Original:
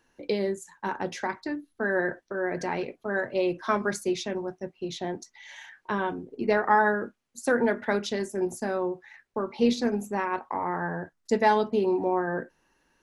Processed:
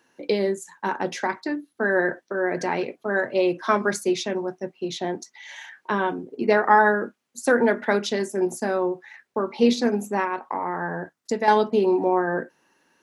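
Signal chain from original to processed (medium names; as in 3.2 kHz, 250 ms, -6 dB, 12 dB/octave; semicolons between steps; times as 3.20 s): high-pass 170 Hz 12 dB/octave; 10.24–11.48 s: compression 2.5:1, threshold -29 dBFS, peak gain reduction 8.5 dB; trim +5 dB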